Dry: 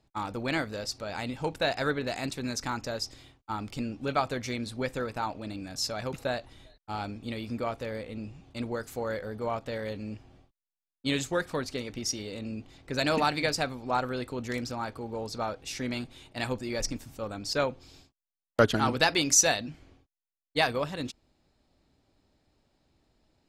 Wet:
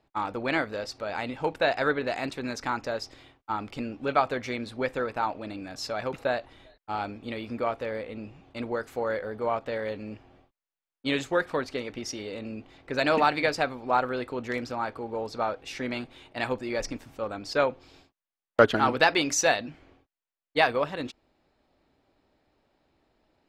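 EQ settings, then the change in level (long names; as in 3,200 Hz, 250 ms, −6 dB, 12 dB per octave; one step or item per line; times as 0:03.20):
bass and treble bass −9 dB, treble −13 dB
+4.5 dB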